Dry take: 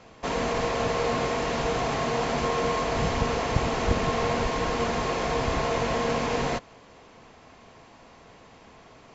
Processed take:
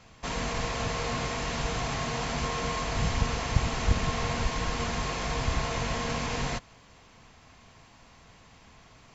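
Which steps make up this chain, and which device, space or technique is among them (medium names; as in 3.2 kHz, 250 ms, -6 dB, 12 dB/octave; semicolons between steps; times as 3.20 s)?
smiley-face EQ (bass shelf 180 Hz +5.5 dB; peaking EQ 430 Hz -8.5 dB 2 oct; treble shelf 6.2 kHz +6.5 dB); trim -2 dB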